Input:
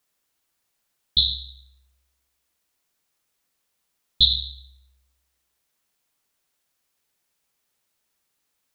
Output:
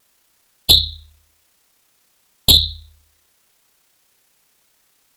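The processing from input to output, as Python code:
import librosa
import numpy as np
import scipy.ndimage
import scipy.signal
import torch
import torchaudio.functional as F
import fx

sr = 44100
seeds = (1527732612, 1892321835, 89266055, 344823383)

y = fx.fold_sine(x, sr, drive_db=12, ceiling_db=-1.5)
y = fx.vibrato(y, sr, rate_hz=0.93, depth_cents=22.0)
y = fx.stretch_grains(y, sr, factor=0.59, grain_ms=62.0)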